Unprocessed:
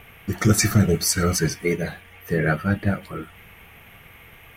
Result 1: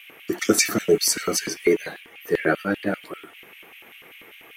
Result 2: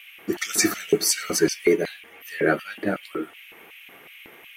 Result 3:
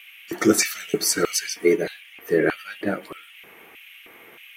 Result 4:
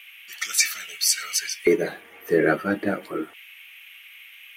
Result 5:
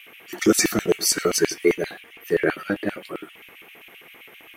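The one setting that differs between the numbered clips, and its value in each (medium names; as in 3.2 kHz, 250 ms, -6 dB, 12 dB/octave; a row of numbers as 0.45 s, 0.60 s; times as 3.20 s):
LFO high-pass, rate: 5.1 Hz, 2.7 Hz, 1.6 Hz, 0.3 Hz, 7.6 Hz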